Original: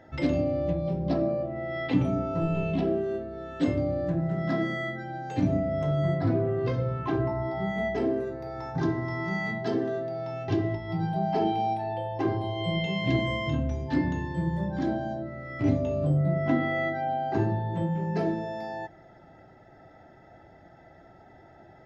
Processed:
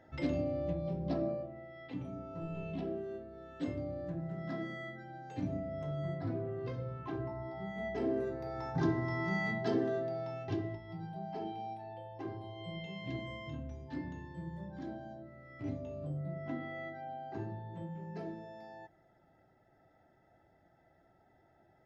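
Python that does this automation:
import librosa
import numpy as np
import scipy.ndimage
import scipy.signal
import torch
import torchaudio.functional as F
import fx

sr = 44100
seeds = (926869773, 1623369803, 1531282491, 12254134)

y = fx.gain(x, sr, db=fx.line((1.3, -8.0), (1.75, -19.0), (2.78, -12.0), (7.73, -12.0), (8.25, -4.0), (10.09, -4.0), (11.01, -15.0)))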